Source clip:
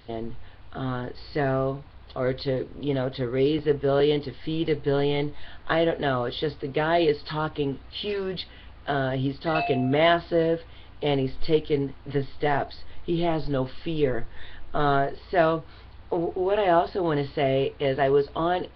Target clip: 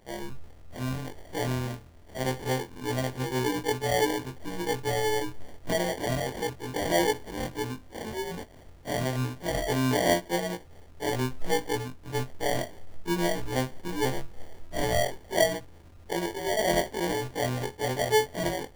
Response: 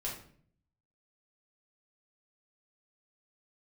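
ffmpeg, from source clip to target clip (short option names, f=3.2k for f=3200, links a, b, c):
-af "afftfilt=real='re':imag='-im':win_size=2048:overlap=0.75,acrusher=samples=34:mix=1:aa=0.000001"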